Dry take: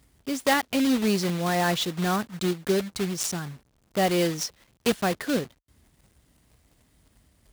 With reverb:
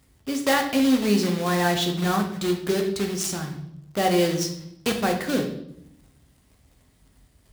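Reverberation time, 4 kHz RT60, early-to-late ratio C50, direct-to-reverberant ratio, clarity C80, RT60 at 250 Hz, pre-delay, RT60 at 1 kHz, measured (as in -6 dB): 0.75 s, 0.65 s, 8.0 dB, 3.0 dB, 11.5 dB, 1.1 s, 8 ms, 0.70 s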